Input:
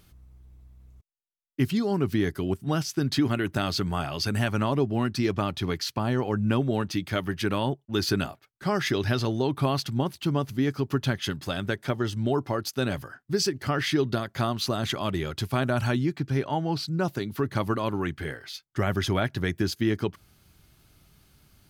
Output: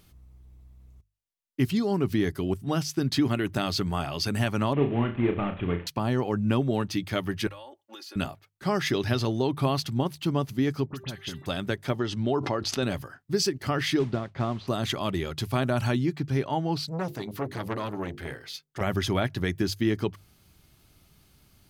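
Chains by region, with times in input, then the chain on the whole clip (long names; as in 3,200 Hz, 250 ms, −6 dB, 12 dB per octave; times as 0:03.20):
0:04.73–0:05.87: variable-slope delta modulation 16 kbit/s + flutter between parallel walls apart 5.9 metres, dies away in 0.3 s
0:07.47–0:08.16: high-pass filter 420 Hz 24 dB per octave + comb filter 3.6 ms, depth 78% + downward compressor 8 to 1, threshold −41 dBFS
0:10.86–0:11.46: hum removal 392.1 Hz, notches 10 + downward compressor 12 to 1, threshold −31 dBFS + all-pass dispersion highs, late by 56 ms, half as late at 2,300 Hz
0:11.99–0:12.83: low-pass filter 5,200 Hz + low-shelf EQ 130 Hz −7 dB + background raised ahead of every attack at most 37 dB per second
0:13.99–0:14.68: de-essing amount 70% + noise that follows the level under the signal 11 dB + head-to-tape spacing loss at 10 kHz 31 dB
0:16.79–0:18.81: mains-hum notches 50/100/150/200/250/300/350/400/450/500 Hz + saturating transformer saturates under 1,200 Hz
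whole clip: parametric band 1,500 Hz −3.5 dB 0.35 octaves; mains-hum notches 50/100/150 Hz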